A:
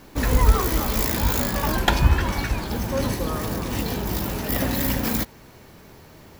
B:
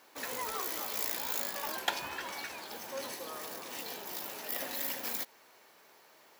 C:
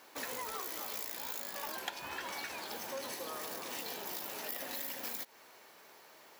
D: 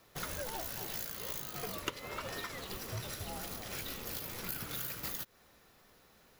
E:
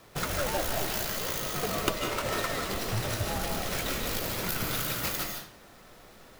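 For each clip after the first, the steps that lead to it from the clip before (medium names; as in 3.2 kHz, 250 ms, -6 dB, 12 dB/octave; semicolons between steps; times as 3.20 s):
dynamic bell 1.2 kHz, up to -4 dB, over -37 dBFS, Q 0.94; high-pass 620 Hz 12 dB/octave; trim -8.5 dB
compression 6:1, threshold -40 dBFS, peak gain reduction 14 dB; trim +2.5 dB
frequency shift -430 Hz; upward expansion 1.5:1, over -53 dBFS; trim +3 dB
square wave that keeps the level; on a send at -2 dB: reverberation RT60 0.50 s, pre-delay 110 ms; on the sum: trim +4 dB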